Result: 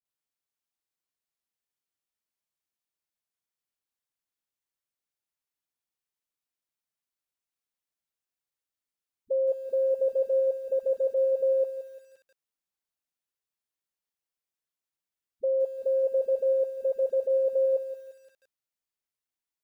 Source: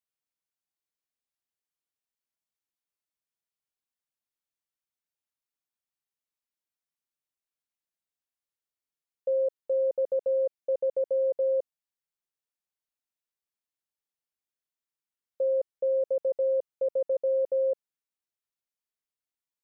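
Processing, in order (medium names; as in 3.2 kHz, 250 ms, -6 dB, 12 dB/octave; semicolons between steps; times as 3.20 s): phase dispersion highs, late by 52 ms, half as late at 380 Hz; bit-crushed delay 173 ms, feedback 35%, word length 9-bit, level -12 dB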